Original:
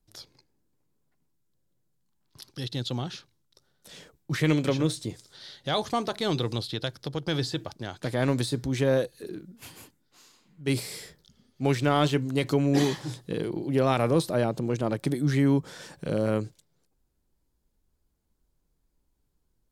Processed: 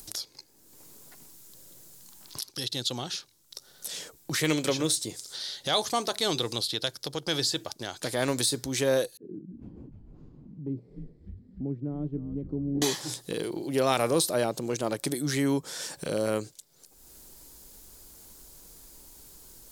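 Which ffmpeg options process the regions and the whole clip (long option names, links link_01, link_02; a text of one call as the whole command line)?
ffmpeg -i in.wav -filter_complex "[0:a]asettb=1/sr,asplit=3[link_01][link_02][link_03];[link_01]atrim=end=9.174[link_04];[link_02]atrim=start=9.17:end=12.82,asetpts=PTS-STARTPTS,afade=type=in:duration=0.004:curve=qsin,afade=type=out:start_time=3.646:duration=0.004:curve=qsin,asuperpass=centerf=180:order=4:qfactor=1,asplit=7[link_05][link_06][link_07][link_08][link_09][link_10][link_11];[link_06]adelay=299,afreqshift=-110,volume=-11dB[link_12];[link_07]adelay=598,afreqshift=-220,volume=-16.7dB[link_13];[link_08]adelay=897,afreqshift=-330,volume=-22.4dB[link_14];[link_09]adelay=1196,afreqshift=-440,volume=-28dB[link_15];[link_10]adelay=1495,afreqshift=-550,volume=-33.7dB[link_16];[link_11]adelay=1794,afreqshift=-660,volume=-39.4dB[link_17];[link_05][link_12][link_13][link_14][link_15][link_16][link_17]amix=inputs=7:normalize=0,atrim=end_sample=160965[link_18];[link_03]atrim=start=12.816[link_19];[link_04][link_18]acrossfade=duration=0.004:curve1=hsin:curve2=qsin[link_20];[link_20][link_19]acrossfade=duration=0.004:curve1=qsin:curve2=hsin,bass=frequency=250:gain=-9,treble=frequency=4000:gain=12,acompressor=mode=upward:threshold=-30dB:ratio=2.5" out.wav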